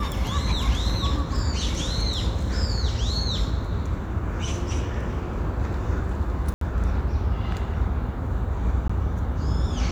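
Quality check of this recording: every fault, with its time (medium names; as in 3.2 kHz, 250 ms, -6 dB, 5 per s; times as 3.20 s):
6.54–6.61 s: dropout 73 ms
8.88–8.89 s: dropout 15 ms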